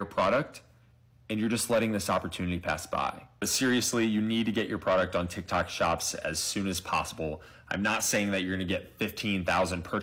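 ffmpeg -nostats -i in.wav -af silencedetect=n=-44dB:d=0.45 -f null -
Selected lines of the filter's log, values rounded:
silence_start: 0.58
silence_end: 1.30 | silence_duration: 0.72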